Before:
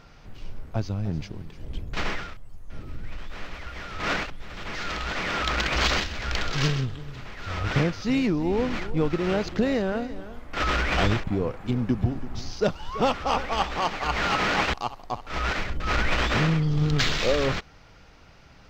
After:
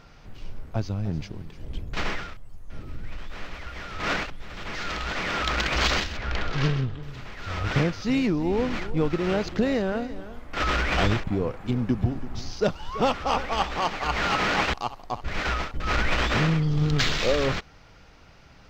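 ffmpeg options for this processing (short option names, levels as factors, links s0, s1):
-filter_complex "[0:a]asettb=1/sr,asplit=3[s0][s1][s2];[s0]atrim=end=6.174[s3];[s1]atrim=start=6.17:end=7.03,asetpts=PTS-STARTPTS,afade=t=in:d=0.004:c=qsin,afade=t=out:st=0.856:d=0.004:c=qsin,aemphasis=mode=reproduction:type=75fm[s4];[s2]atrim=start=7.026[s5];[s3][s4]acrossfade=d=0.004:c1=hsin:c2=qsin[s6];[s6][s5]acrossfade=d=0.004:c1=qsin:c2=hsin,asplit=3[s7][s8][s9];[s7]atrim=end=15.242[s10];[s8]atrim=start=15.238:end=15.742,asetpts=PTS-STARTPTS,areverse[s11];[s9]atrim=start=15.738[s12];[s10][s11]acrossfade=d=0.004:c1=hsin:c2=hsin[s13];[s13][s12]acrossfade=d=0.004:c1=hsin:c2=hsin"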